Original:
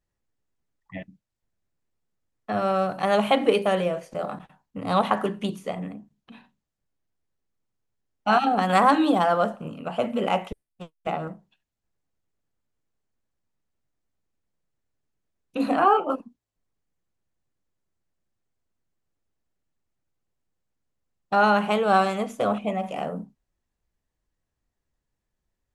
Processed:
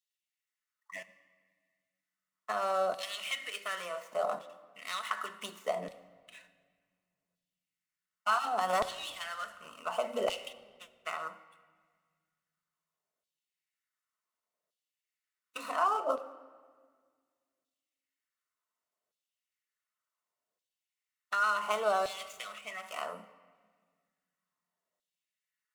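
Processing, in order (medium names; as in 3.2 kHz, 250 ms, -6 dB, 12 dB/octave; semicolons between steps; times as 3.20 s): median filter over 9 samples; compression 6:1, threshold -25 dBFS, peak gain reduction 12 dB; comb of notches 820 Hz; LFO high-pass saw down 0.68 Hz 590–3600 Hz; tone controls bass +9 dB, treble +10 dB; reverberation RT60 1.7 s, pre-delay 5 ms, DRR 10 dB; trim -2.5 dB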